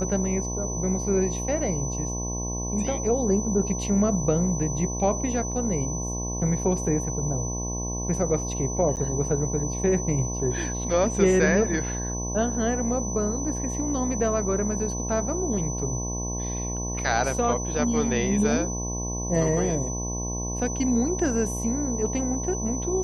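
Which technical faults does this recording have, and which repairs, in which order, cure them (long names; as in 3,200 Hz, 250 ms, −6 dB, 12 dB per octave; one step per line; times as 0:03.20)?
mains buzz 60 Hz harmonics 18 −31 dBFS
whistle 6,000 Hz −32 dBFS
0:08.96–0:08.97: drop-out 8.7 ms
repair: notch filter 6,000 Hz, Q 30
hum removal 60 Hz, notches 18
repair the gap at 0:08.96, 8.7 ms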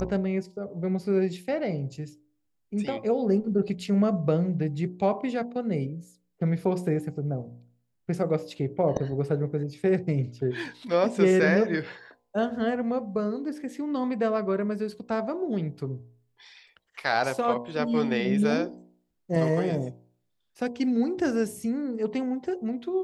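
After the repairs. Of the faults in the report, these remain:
none of them is left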